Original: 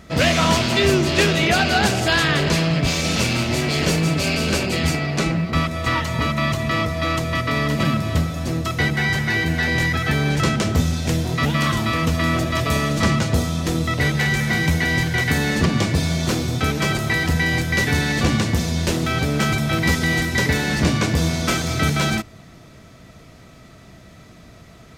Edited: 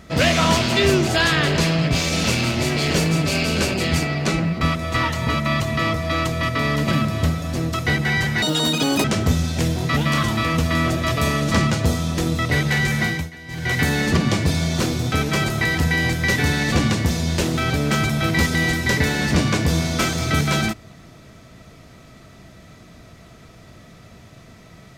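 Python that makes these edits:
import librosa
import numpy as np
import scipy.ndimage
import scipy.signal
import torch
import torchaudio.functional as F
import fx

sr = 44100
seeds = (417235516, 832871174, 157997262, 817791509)

y = fx.edit(x, sr, fx.cut(start_s=1.07, length_s=0.92),
    fx.speed_span(start_s=9.34, length_s=1.19, speed=1.91),
    fx.fade_down_up(start_s=14.51, length_s=0.73, db=-19.0, fade_s=0.28), tone=tone)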